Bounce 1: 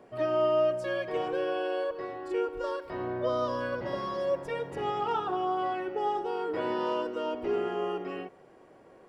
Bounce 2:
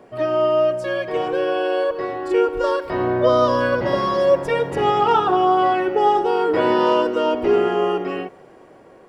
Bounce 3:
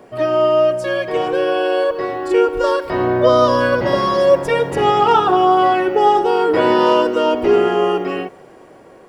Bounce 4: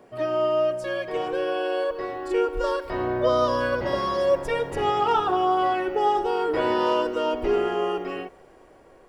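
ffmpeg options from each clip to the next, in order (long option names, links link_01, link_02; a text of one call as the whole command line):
ffmpeg -i in.wav -af "dynaudnorm=framelen=530:gausssize=7:maxgain=6dB,volume=7.5dB" out.wav
ffmpeg -i in.wav -af "highshelf=frequency=5400:gain=5.5,volume=3.5dB" out.wav
ffmpeg -i in.wav -af "asubboost=boost=6.5:cutoff=57,volume=-8.5dB" out.wav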